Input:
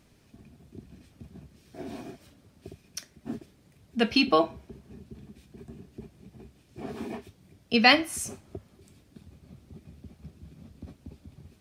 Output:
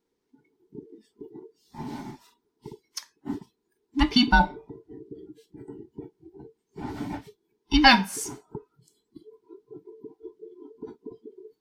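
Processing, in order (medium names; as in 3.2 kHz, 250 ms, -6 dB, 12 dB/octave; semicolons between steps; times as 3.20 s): every band turned upside down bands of 500 Hz; spectral noise reduction 21 dB; fifteen-band graphic EQ 100 Hz -7 dB, 2.5 kHz -5 dB, 10 kHz -5 dB; trim +4 dB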